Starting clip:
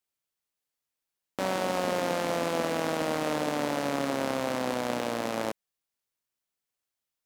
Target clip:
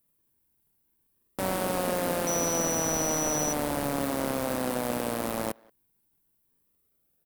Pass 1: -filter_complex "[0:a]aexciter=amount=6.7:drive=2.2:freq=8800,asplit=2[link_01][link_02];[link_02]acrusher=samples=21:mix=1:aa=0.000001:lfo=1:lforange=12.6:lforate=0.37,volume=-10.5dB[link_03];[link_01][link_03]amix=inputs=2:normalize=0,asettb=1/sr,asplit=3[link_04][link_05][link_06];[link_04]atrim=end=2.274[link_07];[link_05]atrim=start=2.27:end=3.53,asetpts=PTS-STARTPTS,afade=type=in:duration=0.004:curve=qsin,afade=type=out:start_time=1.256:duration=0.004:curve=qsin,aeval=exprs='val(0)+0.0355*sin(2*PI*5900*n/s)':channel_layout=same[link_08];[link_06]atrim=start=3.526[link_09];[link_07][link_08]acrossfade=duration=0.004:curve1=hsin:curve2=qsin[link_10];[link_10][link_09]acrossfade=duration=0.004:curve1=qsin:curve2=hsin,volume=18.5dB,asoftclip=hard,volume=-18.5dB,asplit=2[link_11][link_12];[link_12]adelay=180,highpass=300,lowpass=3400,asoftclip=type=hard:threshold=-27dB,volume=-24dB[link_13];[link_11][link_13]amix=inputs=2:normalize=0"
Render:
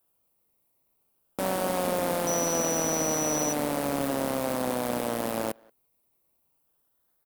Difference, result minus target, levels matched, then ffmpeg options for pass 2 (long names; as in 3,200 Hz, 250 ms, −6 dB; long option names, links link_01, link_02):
sample-and-hold swept by an LFO: distortion −20 dB
-filter_complex "[0:a]aexciter=amount=6.7:drive=2.2:freq=8800,asplit=2[link_01][link_02];[link_02]acrusher=samples=56:mix=1:aa=0.000001:lfo=1:lforange=33.6:lforate=0.37,volume=-10.5dB[link_03];[link_01][link_03]amix=inputs=2:normalize=0,asettb=1/sr,asplit=3[link_04][link_05][link_06];[link_04]atrim=end=2.274[link_07];[link_05]atrim=start=2.27:end=3.53,asetpts=PTS-STARTPTS,afade=type=in:duration=0.004:curve=qsin,afade=type=out:start_time=1.256:duration=0.004:curve=qsin,aeval=exprs='val(0)+0.0355*sin(2*PI*5900*n/s)':channel_layout=same[link_08];[link_06]atrim=start=3.526[link_09];[link_07][link_08]acrossfade=duration=0.004:curve1=hsin:curve2=qsin[link_10];[link_10][link_09]acrossfade=duration=0.004:curve1=qsin:curve2=hsin,volume=18.5dB,asoftclip=hard,volume=-18.5dB,asplit=2[link_11][link_12];[link_12]adelay=180,highpass=300,lowpass=3400,asoftclip=type=hard:threshold=-27dB,volume=-24dB[link_13];[link_11][link_13]amix=inputs=2:normalize=0"